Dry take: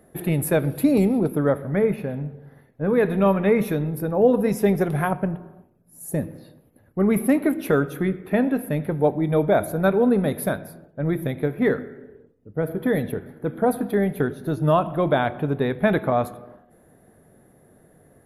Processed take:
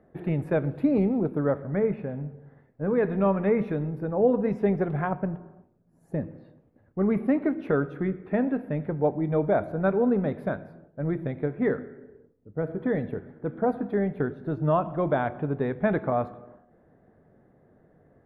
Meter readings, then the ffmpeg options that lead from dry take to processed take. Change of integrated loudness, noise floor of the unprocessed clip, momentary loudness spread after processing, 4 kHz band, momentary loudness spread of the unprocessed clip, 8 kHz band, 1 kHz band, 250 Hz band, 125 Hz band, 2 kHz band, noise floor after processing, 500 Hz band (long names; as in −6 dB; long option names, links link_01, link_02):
−4.5 dB, −57 dBFS, 10 LU, below −15 dB, 10 LU, below −35 dB, −4.5 dB, −4.5 dB, −4.5 dB, −6.5 dB, −62 dBFS, −4.5 dB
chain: -af "lowpass=1900,volume=-4.5dB"